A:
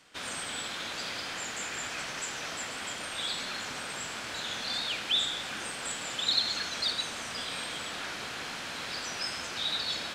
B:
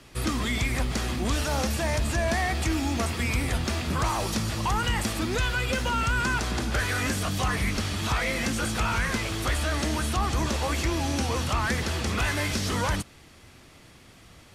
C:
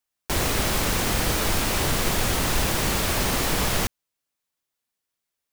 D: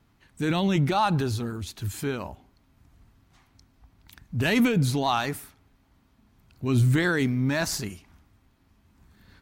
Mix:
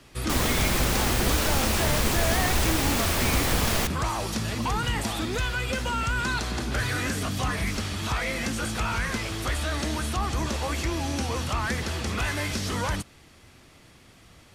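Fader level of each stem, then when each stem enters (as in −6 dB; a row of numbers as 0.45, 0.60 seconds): −12.5, −1.5, −2.0, −14.0 decibels; 0.00, 0.00, 0.00, 0.00 seconds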